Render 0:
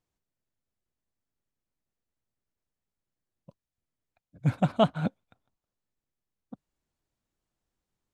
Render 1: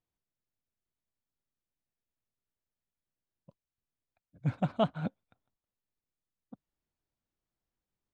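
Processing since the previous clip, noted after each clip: distance through air 74 m; trim -5.5 dB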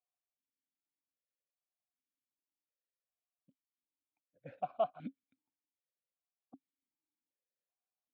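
stepped vowel filter 2.6 Hz; trim +2 dB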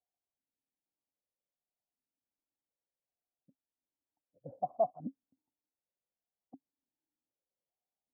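steep low-pass 930 Hz 48 dB/octave; trim +3 dB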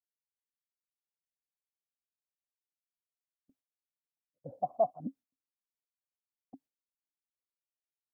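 gate with hold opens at -58 dBFS; trim +2 dB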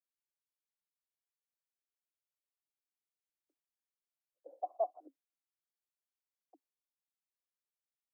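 steep high-pass 310 Hz 96 dB/octave; trim -6 dB

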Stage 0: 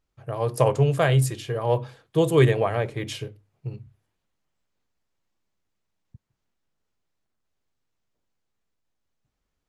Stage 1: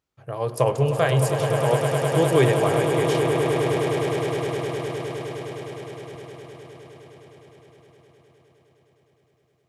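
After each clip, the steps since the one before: high-pass 78 Hz; bass shelf 170 Hz -3 dB; echo with a slow build-up 103 ms, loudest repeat 8, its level -9 dB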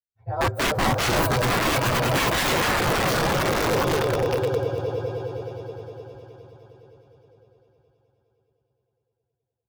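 frequency axis rescaled in octaves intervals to 119%; integer overflow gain 21 dB; spectral contrast expander 1.5:1; trim +7.5 dB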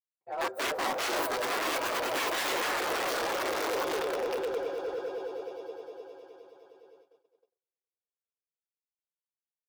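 gate -52 dBFS, range -37 dB; high-pass 320 Hz 24 dB/octave; in parallel at -6 dB: wavefolder -27.5 dBFS; on the sum: trim -8 dB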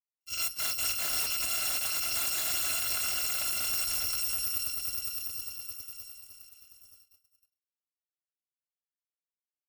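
bit-reversed sample order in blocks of 256 samples

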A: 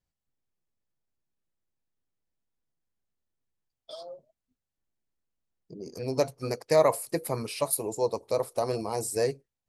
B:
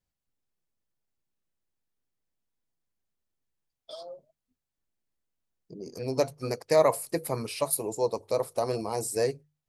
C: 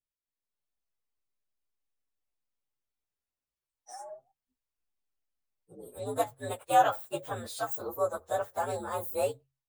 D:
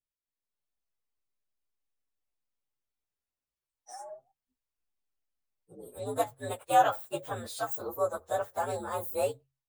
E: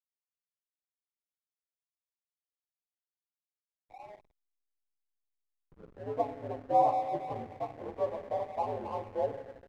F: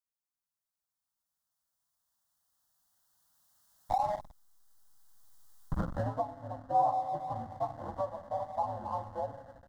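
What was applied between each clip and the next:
hum notches 50/100/150 Hz
frequency axis rescaled in octaves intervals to 120%; peaking EQ 160 Hz -9.5 dB 2.5 oct; level rider gain up to 8 dB; trim -6 dB
no audible change
rippled Chebyshev low-pass 1.1 kHz, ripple 3 dB; reverberation RT60 1.9 s, pre-delay 3 ms, DRR 6 dB; hysteresis with a dead band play -41.5 dBFS
recorder AGC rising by 7.8 dB/s; static phaser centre 1 kHz, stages 4; loudspeaker Doppler distortion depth 0.12 ms

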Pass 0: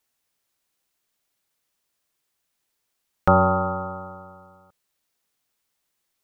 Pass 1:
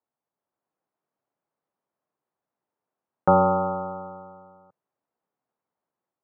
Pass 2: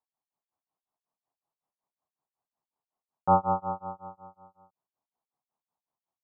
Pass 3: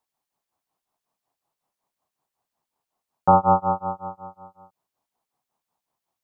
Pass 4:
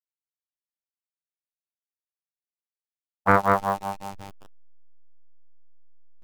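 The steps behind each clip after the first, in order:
Chebyshev band-pass 120–910 Hz, order 2; bass shelf 130 Hz -8.5 dB; level rider gain up to 4.5 dB; trim -2.5 dB
bass shelf 160 Hz +10.5 dB; tremolo 5.4 Hz, depth 98%; high-order bell 890 Hz +9 dB 1 oct; trim -8.5 dB
loudness maximiser +14 dB; trim -4.5 dB
send-on-delta sampling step -31.5 dBFS; robot voice 98.7 Hz; loudspeaker Doppler distortion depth 0.91 ms; trim -1 dB

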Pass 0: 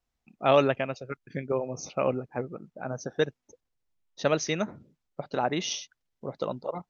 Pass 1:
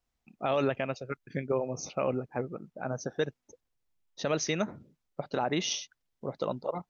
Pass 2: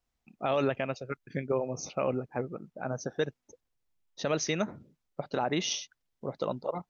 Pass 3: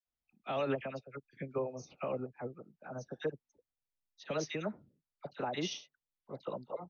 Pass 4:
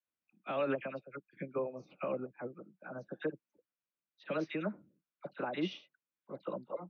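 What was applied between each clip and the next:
peak limiter -18 dBFS, peak gain reduction 9.5 dB
no audible change
Chebyshev low-pass 4.5 kHz, order 2; phase dispersion lows, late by 64 ms, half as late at 1.3 kHz; upward expansion 1.5:1, over -44 dBFS; trim -4 dB
cabinet simulation 110–4000 Hz, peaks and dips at 190 Hz +9 dB, 320 Hz +10 dB, 560 Hz +6 dB, 1.1 kHz +5 dB, 1.5 kHz +8 dB, 2.4 kHz +6 dB; trim -5 dB

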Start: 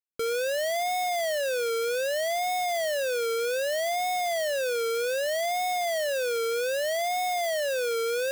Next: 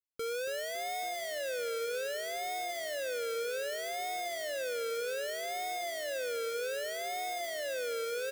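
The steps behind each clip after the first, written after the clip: peaking EQ 650 Hz -5 dB 0.25 oct; on a send: frequency-shifting echo 278 ms, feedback 55%, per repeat -37 Hz, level -13 dB; on the sum: trim -7.5 dB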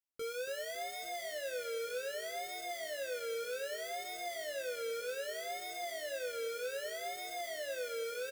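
doubling 20 ms -5 dB; trim -5 dB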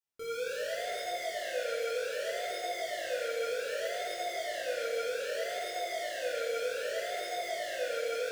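reverberation RT60 3.0 s, pre-delay 3 ms, DRR -8 dB; trim -3.5 dB

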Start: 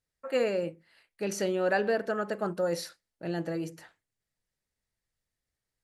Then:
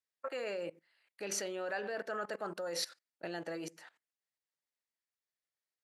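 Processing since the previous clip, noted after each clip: level held to a coarse grid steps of 20 dB; frequency weighting A; trim +5 dB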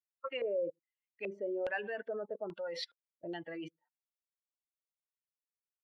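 expander on every frequency bin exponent 2; LFO low-pass square 1.2 Hz 520–2900 Hz; trim +2 dB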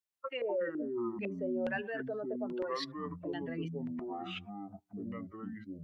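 ever faster or slower copies 126 ms, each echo -7 st, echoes 2

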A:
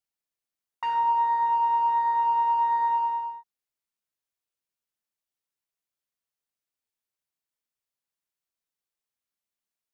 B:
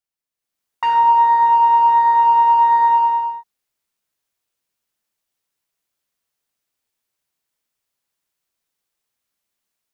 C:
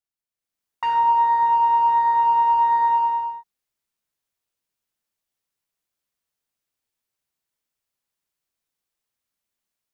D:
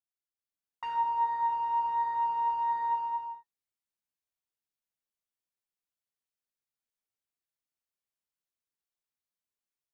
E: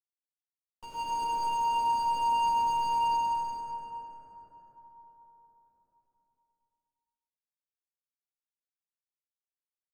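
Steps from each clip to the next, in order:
level rider gain up to 10.5 dB
bass shelf 190 Hz +3.5 dB; trim -5 dB
flange 0.31 Hz, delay 7.1 ms, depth 7.6 ms, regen +60%; trim -7.5 dB
median filter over 41 samples; reverberation RT60 4.7 s, pre-delay 78 ms, DRR -6.5 dB

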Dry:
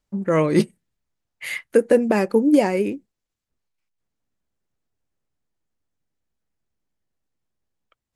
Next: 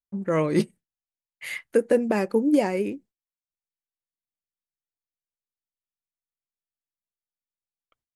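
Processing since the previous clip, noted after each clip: gate with hold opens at -49 dBFS; trim -4.5 dB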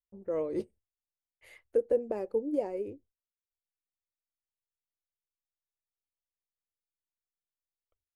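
FFT filter 100 Hz 0 dB, 150 Hz -26 dB, 470 Hz -7 dB, 1.6 kHz -24 dB; trim +1.5 dB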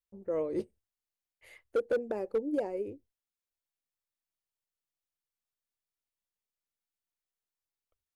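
hard clipper -23.5 dBFS, distortion -14 dB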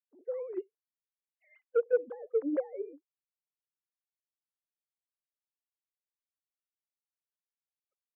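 formants replaced by sine waves

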